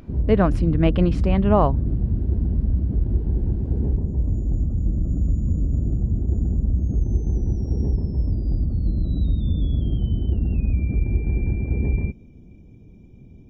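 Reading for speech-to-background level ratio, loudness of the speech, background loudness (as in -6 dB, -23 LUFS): 3.0 dB, -21.0 LUFS, -24.0 LUFS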